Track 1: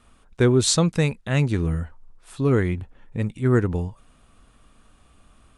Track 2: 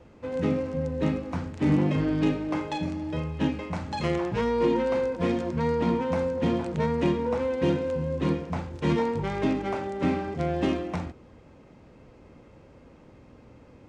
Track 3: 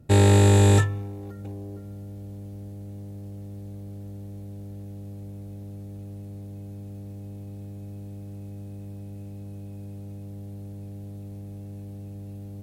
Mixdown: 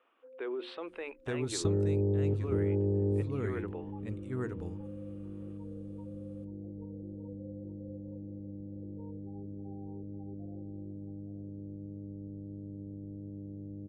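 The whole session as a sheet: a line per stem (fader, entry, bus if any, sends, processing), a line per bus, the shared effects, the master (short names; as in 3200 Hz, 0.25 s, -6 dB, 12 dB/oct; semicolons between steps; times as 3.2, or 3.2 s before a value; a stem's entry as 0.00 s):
-9.5 dB, 0.00 s, bus A, no send, echo send -6.5 dB, notches 60/120/180/240/300/360 Hz
-17.0 dB, 0.00 s, bus A, no send, echo send -12 dB, compressor, threshold -30 dBFS, peak gain reduction 11.5 dB; loudest bins only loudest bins 4
+2.5 dB, 1.55 s, no bus, no send, echo send -3 dB, ladder low-pass 480 Hz, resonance 45%
bus A: 0.0 dB, elliptic band-pass 340–2900 Hz, stop band 40 dB; limiter -30.5 dBFS, peak gain reduction 9 dB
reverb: off
echo: echo 0.872 s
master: compressor 6:1, threshold -26 dBFS, peak gain reduction 8.5 dB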